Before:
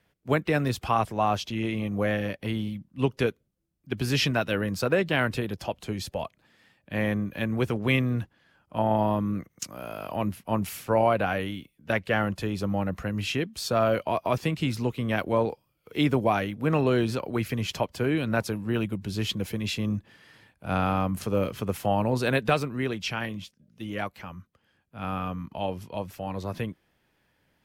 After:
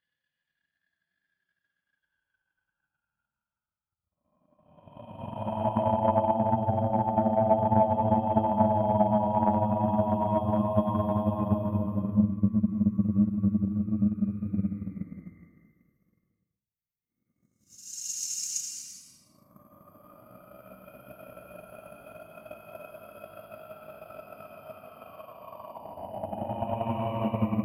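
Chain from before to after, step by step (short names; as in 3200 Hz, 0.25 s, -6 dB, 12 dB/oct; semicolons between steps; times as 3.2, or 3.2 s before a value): per-bin expansion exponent 1.5; Paulstretch 15×, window 0.10 s, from 8.4; transient shaper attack +11 dB, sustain -3 dB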